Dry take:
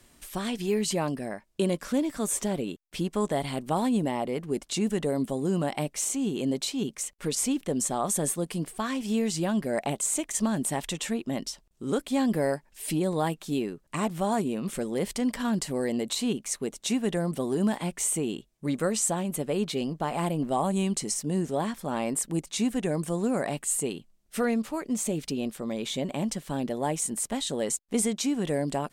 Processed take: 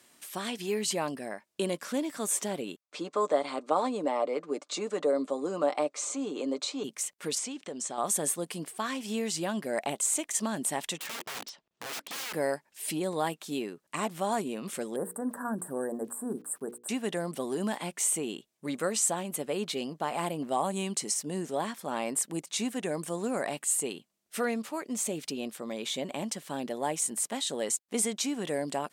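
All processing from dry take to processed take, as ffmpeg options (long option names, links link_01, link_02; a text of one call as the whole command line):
ffmpeg -i in.wav -filter_complex "[0:a]asettb=1/sr,asplit=3[link_01][link_02][link_03];[link_01]atrim=end=2.814[link_04];[link_02]atrim=start=2.81:end=6.84,asetpts=PTS-STARTPTS,afade=type=in:duration=0.004:curve=qsin,afade=type=out:start_time=4.026:duration=0.004:curve=qsin,highpass=frequency=230:width=0.5412,highpass=frequency=230:width=1.3066,equalizer=frequency=540:width_type=q:width=4:gain=8,equalizer=frequency=1200:width_type=q:width=4:gain=8,equalizer=frequency=1800:width_type=q:width=4:gain=-5,equalizer=frequency=3000:width_type=q:width=4:gain=-8,equalizer=frequency=5500:width_type=q:width=4:gain=-5,lowpass=frequency=7000:width=0.5412,lowpass=frequency=7000:width=1.3066,aecho=1:1:6.7:0.45,atrim=end_sample=177723[link_05];[link_03]atrim=start=6.836[link_06];[link_04][link_05]acrossfade=duration=0.004:curve1=hsin:curve2=qsin[link_07];[link_07][link_06]acrossfade=duration=0.004:curve1=qsin:curve2=hsin,asettb=1/sr,asplit=3[link_08][link_09][link_10];[link_08]atrim=end=7.384[link_11];[link_09]atrim=start=7.38:end=7.98,asetpts=PTS-STARTPTS,afade=type=in:duration=0.004:curve=qsin,afade=type=out:start_time=0.596:duration=0.004:curve=qsin,lowpass=frequency=8000:width=0.5412,lowpass=frequency=8000:width=1.3066,lowshelf=frequency=160:gain=-8.5,acompressor=threshold=-31dB:ratio=3:attack=3.2:release=140:knee=1:detection=peak[link_12];[link_10]atrim=start=7.976[link_13];[link_11][link_12]acrossfade=duration=0.004:curve1=hsin:curve2=qsin[link_14];[link_14][link_13]acrossfade=duration=0.004:curve1=qsin:curve2=hsin,asettb=1/sr,asplit=3[link_15][link_16][link_17];[link_15]atrim=end=10.984[link_18];[link_16]atrim=start=10.98:end=12.33,asetpts=PTS-STARTPTS,afade=type=in:duration=0.004:curve=qsin,afade=type=out:start_time=1.346:duration=0.004:curve=qsin,lowpass=3700,aeval=exprs='(mod(39.8*val(0)+1,2)-1)/39.8':channel_layout=same[link_19];[link_17]atrim=start=12.326[link_20];[link_18][link_19]acrossfade=duration=0.004:curve1=hsin:curve2=qsin[link_21];[link_21][link_20]acrossfade=duration=0.004:curve1=qsin:curve2=hsin,asettb=1/sr,asplit=3[link_22][link_23][link_24];[link_22]atrim=end=14.964[link_25];[link_23]atrim=start=14.96:end=16.89,asetpts=PTS-STARTPTS,afade=type=in:duration=0.004:curve=qsin,afade=type=out:start_time=1.926:duration=0.004:curve=qsin,asuperstop=centerf=3800:order=20:qfactor=0.6,aeval=exprs='val(0)*gte(abs(val(0)),0.0015)':channel_layout=same,bandreject=frequency=60:width_type=h:width=6,bandreject=frequency=120:width_type=h:width=6,bandreject=frequency=180:width_type=h:width=6,bandreject=frequency=240:width_type=h:width=6,bandreject=frequency=300:width_type=h:width=6,bandreject=frequency=360:width_type=h:width=6,bandreject=frequency=420:width_type=h:width=6,bandreject=frequency=480:width_type=h:width=6[link_26];[link_24]atrim=start=16.886[link_27];[link_25][link_26]acrossfade=duration=0.004:curve1=hsin:curve2=qsin[link_28];[link_28][link_27]acrossfade=duration=0.004:curve1=qsin:curve2=hsin,highpass=170,lowshelf=frequency=400:gain=-7.5" out.wav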